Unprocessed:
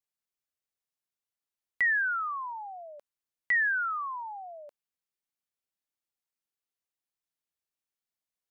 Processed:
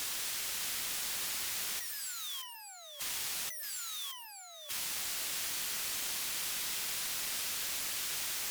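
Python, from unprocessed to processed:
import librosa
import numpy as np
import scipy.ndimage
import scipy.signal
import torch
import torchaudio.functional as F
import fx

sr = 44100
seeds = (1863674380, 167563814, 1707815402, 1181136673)

p1 = fx.quant_dither(x, sr, seeds[0], bits=8, dither='triangular')
p2 = x + F.gain(torch.from_numpy(p1), -9.0).numpy()
p3 = fx.fold_sine(p2, sr, drive_db=18, ceiling_db=-17.5)
p4 = fx.over_compress(p3, sr, threshold_db=-32.0, ratio=-1.0)
p5 = fx.wow_flutter(p4, sr, seeds[1], rate_hz=2.1, depth_cents=29.0)
p6 = scipy.signal.sosfilt(scipy.signal.bessel(2, 1900.0, 'highpass', norm='mag', fs=sr, output='sos'), p5)
p7 = p6 + fx.echo_single(p6, sr, ms=623, db=-8.0, dry=0)
p8 = fx.slew_limit(p7, sr, full_power_hz=300.0)
y = F.gain(torch.from_numpy(p8), -4.5).numpy()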